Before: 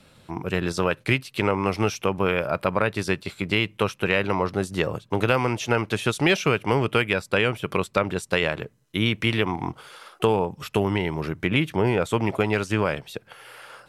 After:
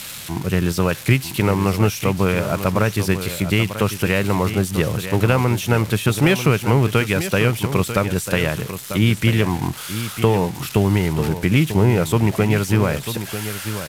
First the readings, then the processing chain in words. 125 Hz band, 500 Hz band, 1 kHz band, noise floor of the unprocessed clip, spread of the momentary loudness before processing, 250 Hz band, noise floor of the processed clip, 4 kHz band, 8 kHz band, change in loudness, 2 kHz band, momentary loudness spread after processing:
+10.0 dB, +3.0 dB, +2.0 dB, −58 dBFS, 6 LU, +6.5 dB, −33 dBFS, +2.5 dB, +10.5 dB, +5.0 dB, +2.0 dB, 7 LU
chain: spike at every zero crossing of −18 dBFS
bass and treble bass +9 dB, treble −7 dB
single-tap delay 944 ms −10.5 dB
downsampling to 32,000 Hz
level +1.5 dB

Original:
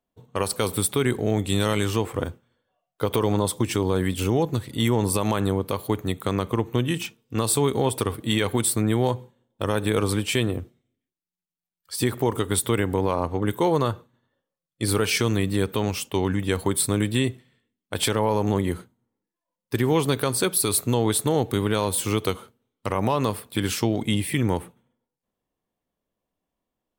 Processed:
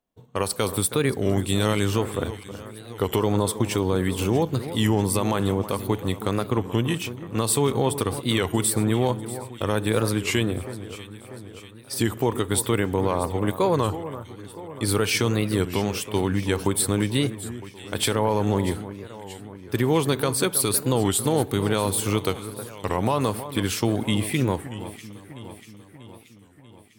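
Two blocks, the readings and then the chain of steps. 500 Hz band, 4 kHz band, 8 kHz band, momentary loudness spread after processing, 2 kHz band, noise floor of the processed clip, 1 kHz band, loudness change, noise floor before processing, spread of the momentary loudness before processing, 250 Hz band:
+0.5 dB, 0.0 dB, 0.0 dB, 16 LU, +0.5 dB, −48 dBFS, +0.5 dB, 0.0 dB, below −85 dBFS, 7 LU, +0.5 dB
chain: on a send: delay that swaps between a low-pass and a high-pass 320 ms, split 1,800 Hz, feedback 75%, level −12.5 dB
on the sum: wow of a warped record 33 1/3 rpm, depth 160 cents

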